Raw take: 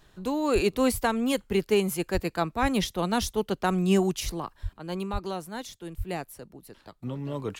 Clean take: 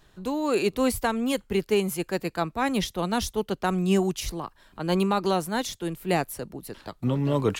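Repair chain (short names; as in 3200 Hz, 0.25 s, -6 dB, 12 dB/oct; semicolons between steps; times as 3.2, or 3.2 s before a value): de-plosive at 0.54/2.13/2.61/4.62/5.12/5.97; gain correction +9 dB, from 4.73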